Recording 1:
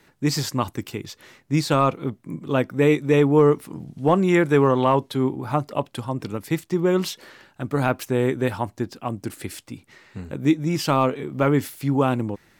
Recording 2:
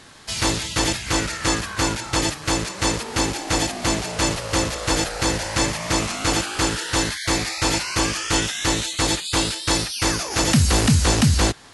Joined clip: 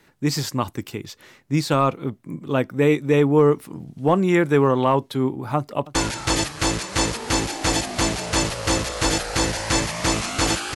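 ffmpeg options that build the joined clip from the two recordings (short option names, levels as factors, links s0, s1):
-filter_complex "[0:a]apad=whole_dur=10.75,atrim=end=10.75,atrim=end=5.952[s0];[1:a]atrim=start=1.808:end=6.61[s1];[s0][s1]acrossfade=d=0.004:c1=hsin:c2=hsin,asplit=2[s2][s3];[s3]afade=t=in:st=5.56:d=0.01,afade=t=out:st=5.95:d=0.01,aecho=0:1:300|600|900|1200|1500|1800:0.133352|0.0800113|0.0480068|0.0288041|0.0172824|0.0103695[s4];[s2][s4]amix=inputs=2:normalize=0"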